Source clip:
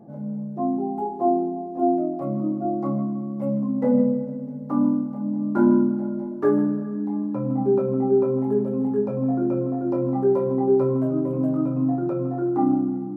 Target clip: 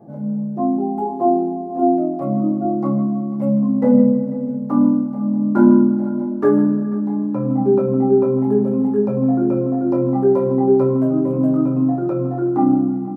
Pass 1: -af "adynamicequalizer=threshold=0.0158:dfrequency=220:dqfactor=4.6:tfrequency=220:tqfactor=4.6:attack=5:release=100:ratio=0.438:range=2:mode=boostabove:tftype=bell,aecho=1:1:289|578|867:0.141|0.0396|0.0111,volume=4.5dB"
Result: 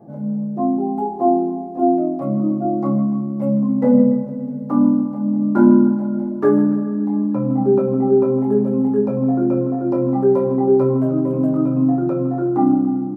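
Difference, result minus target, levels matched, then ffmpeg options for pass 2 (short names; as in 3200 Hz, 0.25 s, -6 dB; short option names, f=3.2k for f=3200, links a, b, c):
echo 0.203 s early
-af "adynamicequalizer=threshold=0.0158:dfrequency=220:dqfactor=4.6:tfrequency=220:tqfactor=4.6:attack=5:release=100:ratio=0.438:range=2:mode=boostabove:tftype=bell,aecho=1:1:492|984|1476:0.141|0.0396|0.0111,volume=4.5dB"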